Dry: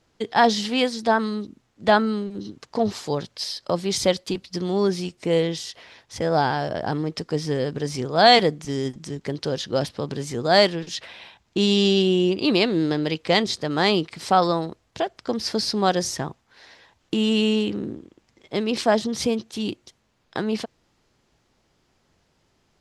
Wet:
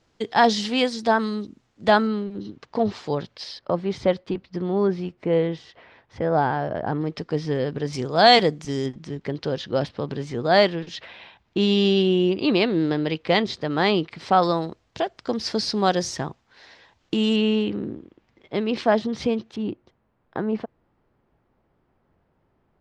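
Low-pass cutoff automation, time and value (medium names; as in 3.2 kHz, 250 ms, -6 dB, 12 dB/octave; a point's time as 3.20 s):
8 kHz
from 2.07 s 3.5 kHz
from 3.59 s 1.9 kHz
from 7.01 s 3.6 kHz
from 7.93 s 7.7 kHz
from 8.86 s 3.5 kHz
from 14.43 s 6.2 kHz
from 17.36 s 3.1 kHz
from 19.56 s 1.4 kHz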